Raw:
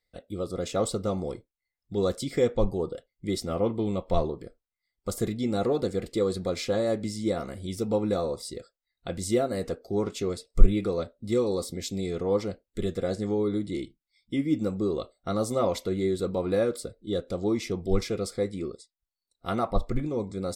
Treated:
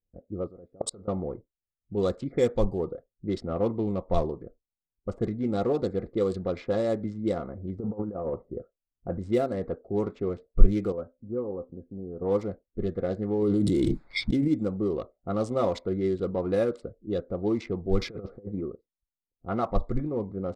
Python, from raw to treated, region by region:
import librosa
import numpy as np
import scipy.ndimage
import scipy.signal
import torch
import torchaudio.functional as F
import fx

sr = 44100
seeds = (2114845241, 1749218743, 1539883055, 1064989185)

y = fx.chain(x, sr, fx.bass_treble(bass_db=-3, treble_db=13),
    fx.level_steps(step_db=23), at=(0.47, 1.08))
y = fx.chain(y, sr, fx.env_lowpass(base_hz=1800.0, full_db=-20.5),
    fx.high_shelf(hz=7200.0, db=10.0), at=(2.32, 2.79))
y = fx.chain(y, sr, fx.lowpass(hz=1600.0, slope=24),
    fx.over_compress(threshold_db=-30.0, ratio=-0.5), at=(7.79, 9.19))
y = fx.chain(y, sr, fx.brickwall_lowpass(high_hz=1700.0),
    fx.comb_fb(f0_hz=260.0, decay_s=0.17, harmonics='all', damping=0.0, mix_pct=60), at=(10.92, 12.22))
y = fx.chain(y, sr, fx.dynamic_eq(hz=2000.0, q=0.77, threshold_db=-52.0, ratio=4.0, max_db=-8),
    fx.env_flatten(amount_pct=100), at=(13.42, 14.48))
y = fx.chain(y, sr, fx.lowpass(hz=4900.0, slope=24),
    fx.over_compress(threshold_db=-34.0, ratio=-0.5), at=(18.01, 18.62))
y = fx.wiener(y, sr, points=15)
y = fx.env_lowpass(y, sr, base_hz=320.0, full_db=-20.5)